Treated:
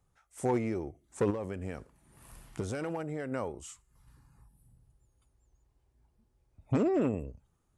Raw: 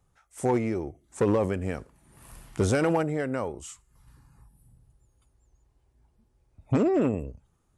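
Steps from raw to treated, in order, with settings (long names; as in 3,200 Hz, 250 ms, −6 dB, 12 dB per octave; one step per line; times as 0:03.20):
0:01.30–0:03.32: downward compressor 6 to 1, threshold −28 dBFS, peak gain reduction 8.5 dB
level −4.5 dB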